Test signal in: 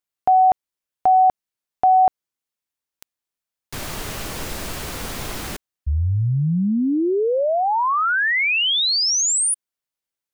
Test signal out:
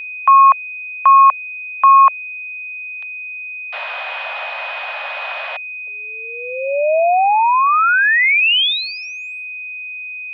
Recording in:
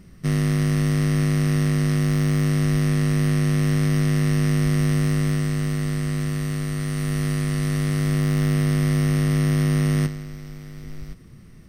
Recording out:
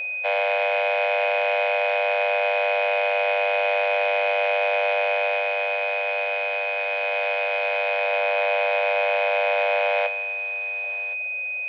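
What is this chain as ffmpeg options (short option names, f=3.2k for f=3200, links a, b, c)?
-af "highpass=f=250:t=q:w=0.5412,highpass=f=250:t=q:w=1.307,lowpass=f=3.1k:t=q:w=0.5176,lowpass=f=3.1k:t=q:w=0.7071,lowpass=f=3.1k:t=q:w=1.932,afreqshift=340,aeval=exprs='val(0)+0.0251*sin(2*PI*2500*n/s)':c=same,volume=6dB"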